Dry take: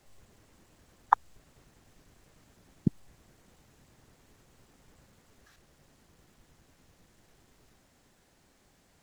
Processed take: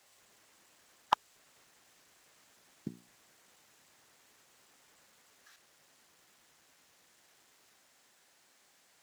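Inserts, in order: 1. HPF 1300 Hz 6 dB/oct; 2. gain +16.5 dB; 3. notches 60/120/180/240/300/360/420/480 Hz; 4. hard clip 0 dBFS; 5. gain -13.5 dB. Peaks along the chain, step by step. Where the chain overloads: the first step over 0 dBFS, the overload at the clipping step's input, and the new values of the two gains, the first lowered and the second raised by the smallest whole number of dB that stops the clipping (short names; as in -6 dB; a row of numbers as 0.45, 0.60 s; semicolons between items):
-7.0, +9.5, +9.5, 0.0, -13.5 dBFS; step 2, 9.5 dB; step 2 +6.5 dB, step 5 -3.5 dB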